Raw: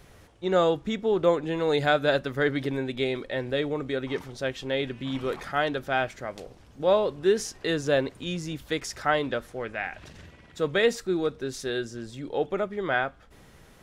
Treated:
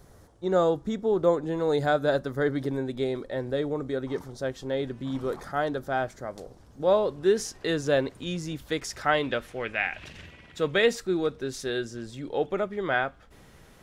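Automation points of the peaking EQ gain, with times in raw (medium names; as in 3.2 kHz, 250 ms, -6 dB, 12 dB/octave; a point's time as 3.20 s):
peaking EQ 2.6 kHz 1 oct
6.23 s -13.5 dB
7.46 s -2.5 dB
8.82 s -2.5 dB
9.58 s +9 dB
10.17 s +9 dB
11.05 s -0.5 dB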